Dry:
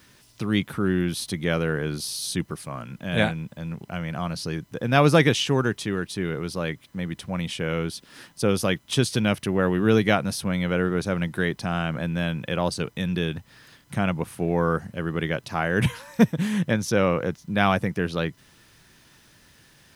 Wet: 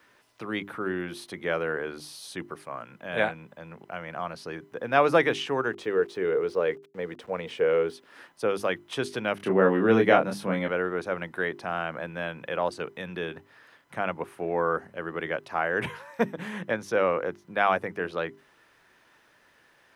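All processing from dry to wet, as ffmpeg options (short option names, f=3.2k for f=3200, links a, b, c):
-filter_complex "[0:a]asettb=1/sr,asplit=3[a][b][c];[a]atrim=end=5.734[d];[b]atrim=start=5.73:end=7.93,asetpts=PTS-STARTPTS,afade=t=in:d=0.004:c=qsin,afade=t=out:st=2.196:d=0.004:c=qsin,lowpass=8k,equalizer=f=450:w=3.9:g=14.5,aeval=exprs='val(0)*gte(abs(val(0)),0.00501)':c=same[e];[c]atrim=start=7.926[f];[d][e]acrossfade=d=0.004:c1=hsin:c2=qsin[g];[g][f]acrossfade=d=0.004:c1=qsin:c2=hsin,asettb=1/sr,asplit=3[h][i][j];[h]atrim=end=9.374[k];[i]atrim=start=9.37:end=10.68,asetpts=PTS-STARTPTS,afade=t=in:d=0.004:c=qsin,afade=t=out:st=1.306:d=0.004:c=qsin,highpass=150,lowshelf=f=390:g=11.5,asplit=2[l][m];[m]adelay=26,volume=-3.5dB[n];[l][n]amix=inputs=2:normalize=0,atrim=end_sample=57771[o];[j]atrim=start=10.676[p];[k][o]acrossfade=d=0.004:c1=hsin:c2=qsin[q];[q][p]acrossfade=d=0.004:c1=qsin:c2=hsin,acrossover=split=340 2400:gain=0.141 1 0.2[r][s][t];[r][s][t]amix=inputs=3:normalize=0,bandreject=f=50:t=h:w=6,bandreject=f=100:t=h:w=6,bandreject=f=150:t=h:w=6,bandreject=f=200:t=h:w=6,bandreject=f=250:t=h:w=6,bandreject=f=300:t=h:w=6,bandreject=f=350:t=h:w=6,bandreject=f=400:t=h:w=6"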